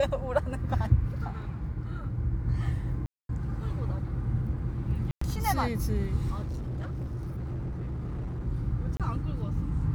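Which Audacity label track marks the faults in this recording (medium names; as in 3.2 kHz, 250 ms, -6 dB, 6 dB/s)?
3.060000	3.290000	dropout 232 ms
5.110000	5.210000	dropout 104 ms
6.460000	8.470000	clipped -30.5 dBFS
8.970000	9.000000	dropout 27 ms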